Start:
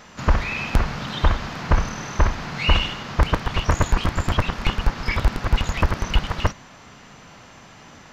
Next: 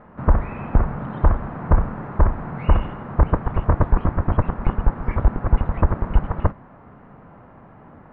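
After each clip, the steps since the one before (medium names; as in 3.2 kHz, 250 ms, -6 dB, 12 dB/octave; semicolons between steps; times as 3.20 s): Bessel low-pass 970 Hz, order 4; trim +2.5 dB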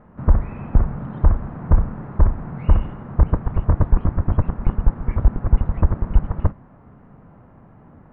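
bass shelf 330 Hz +9 dB; trim -7 dB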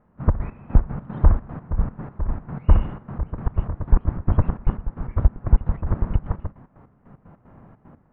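trance gate "..x.x..x.x.xxx.x" 151 bpm -12 dB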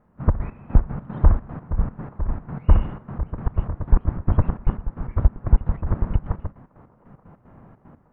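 feedback echo behind a band-pass 878 ms, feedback 50%, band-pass 730 Hz, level -23.5 dB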